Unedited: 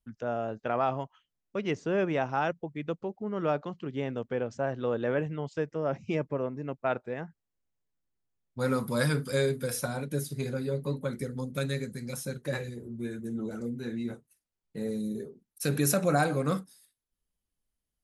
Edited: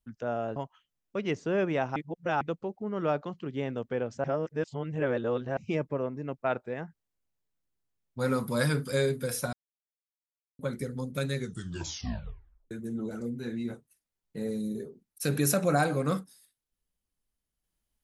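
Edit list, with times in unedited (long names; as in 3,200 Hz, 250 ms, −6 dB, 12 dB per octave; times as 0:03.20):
0:00.56–0:00.96: remove
0:02.36–0:02.81: reverse
0:04.64–0:05.97: reverse
0:09.93–0:10.99: silence
0:11.75: tape stop 1.36 s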